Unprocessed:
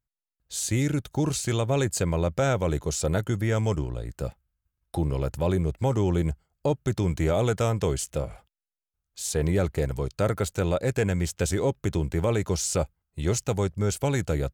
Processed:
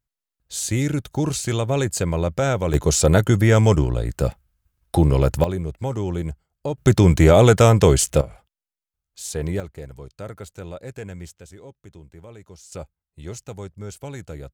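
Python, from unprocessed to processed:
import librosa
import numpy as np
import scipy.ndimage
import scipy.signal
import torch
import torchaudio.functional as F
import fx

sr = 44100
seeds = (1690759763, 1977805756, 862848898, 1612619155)

y = fx.gain(x, sr, db=fx.steps((0.0, 3.0), (2.74, 10.0), (5.44, -1.5), (6.78, 11.5), (8.21, -1.0), (9.6, -10.0), (11.39, -18.0), (12.72, -9.0)))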